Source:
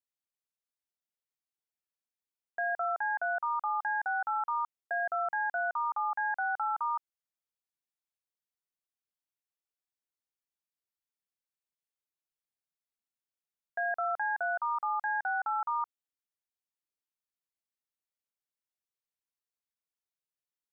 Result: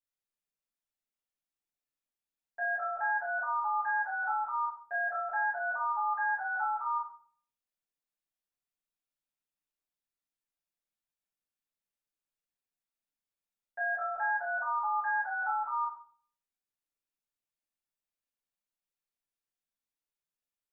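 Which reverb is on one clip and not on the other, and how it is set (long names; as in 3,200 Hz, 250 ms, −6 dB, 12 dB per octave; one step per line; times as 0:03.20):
rectangular room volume 61 cubic metres, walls mixed, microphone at 2.3 metres
level −12 dB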